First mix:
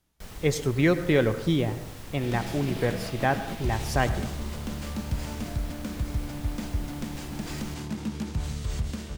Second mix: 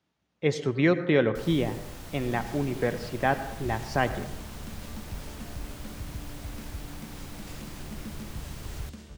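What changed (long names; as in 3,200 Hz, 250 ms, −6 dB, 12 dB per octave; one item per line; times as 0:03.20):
speech: add band-pass filter 140–4,400 Hz
first sound: entry +1.15 s
second sound −9.5 dB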